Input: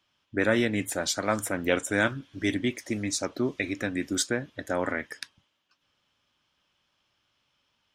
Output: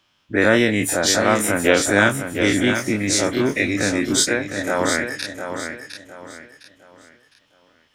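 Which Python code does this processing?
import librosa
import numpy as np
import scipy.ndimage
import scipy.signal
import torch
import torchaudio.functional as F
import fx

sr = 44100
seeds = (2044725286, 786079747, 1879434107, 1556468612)

y = fx.spec_dilate(x, sr, span_ms=60)
y = fx.low_shelf(y, sr, hz=190.0, db=-11.0, at=(4.15, 4.79))
y = fx.echo_feedback(y, sr, ms=708, feedback_pct=32, wet_db=-8.0)
y = y * 10.0 ** (5.5 / 20.0)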